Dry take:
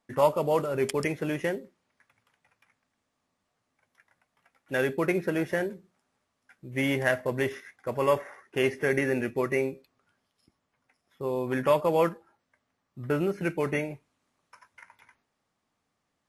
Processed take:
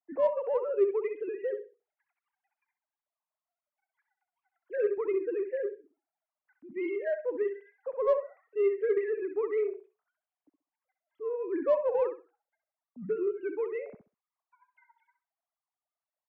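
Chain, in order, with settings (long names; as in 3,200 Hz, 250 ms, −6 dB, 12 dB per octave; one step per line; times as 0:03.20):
three sine waves on the formant tracks
tilt shelving filter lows +9.5 dB, about 650 Hz
repeating echo 65 ms, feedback 22%, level −9.5 dB
in parallel at −10 dB: soft clipping −22.5 dBFS, distortion −9 dB
on the sum: level −7 dB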